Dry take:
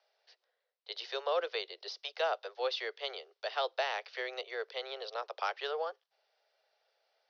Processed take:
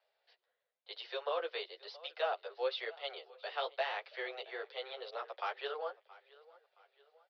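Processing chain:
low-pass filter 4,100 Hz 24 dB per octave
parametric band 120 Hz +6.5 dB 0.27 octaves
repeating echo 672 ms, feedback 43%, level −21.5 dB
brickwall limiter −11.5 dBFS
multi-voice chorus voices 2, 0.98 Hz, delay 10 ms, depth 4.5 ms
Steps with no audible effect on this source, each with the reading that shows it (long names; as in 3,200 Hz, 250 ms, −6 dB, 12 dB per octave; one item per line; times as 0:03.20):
parametric band 120 Hz: nothing at its input below 340 Hz
brickwall limiter −11.5 dBFS: peak of its input −20.5 dBFS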